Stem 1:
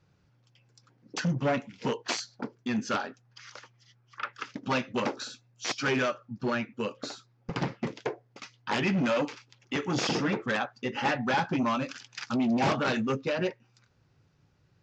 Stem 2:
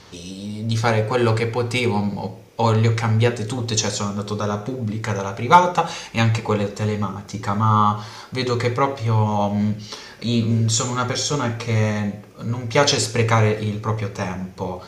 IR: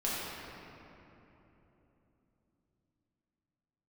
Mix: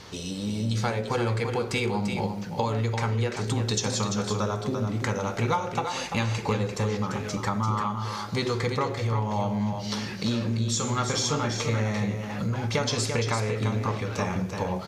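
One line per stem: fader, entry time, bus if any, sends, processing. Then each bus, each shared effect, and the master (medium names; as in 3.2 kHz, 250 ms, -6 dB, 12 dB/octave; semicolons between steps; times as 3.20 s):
-12.5 dB, 1.25 s, no send, no echo send, none
+0.5 dB, 0.00 s, no send, echo send -7 dB, compression 10:1, threshold -24 dBFS, peak gain reduction 18 dB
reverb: none
echo: delay 342 ms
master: none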